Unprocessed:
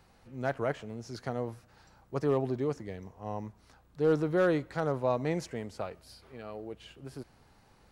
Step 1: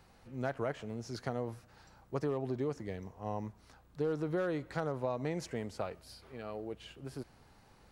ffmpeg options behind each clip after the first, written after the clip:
ffmpeg -i in.wav -af "acompressor=threshold=-30dB:ratio=12" out.wav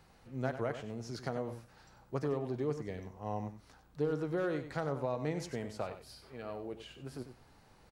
ffmpeg -i in.wav -af "flanger=delay=6.2:depth=2.3:regen=83:speed=0.77:shape=triangular,aecho=1:1:95:0.299,volume=4dB" out.wav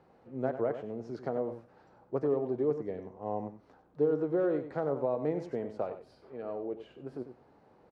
ffmpeg -i in.wav -af "bandpass=frequency=440:width_type=q:width=0.98:csg=0,volume=6.5dB" out.wav

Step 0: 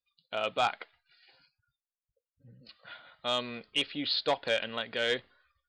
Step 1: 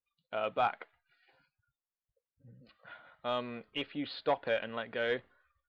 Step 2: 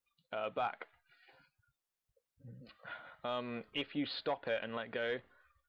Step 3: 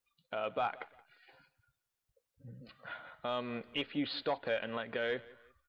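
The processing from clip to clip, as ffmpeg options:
ffmpeg -i in.wav -af "lowpass=1900,volume=-1dB" out.wav
ffmpeg -i in.wav -af "alimiter=level_in=7dB:limit=-24dB:level=0:latency=1:release=322,volume=-7dB,volume=4dB" out.wav
ffmpeg -i in.wav -af "aecho=1:1:174|348:0.0891|0.0294,volume=2dB" out.wav

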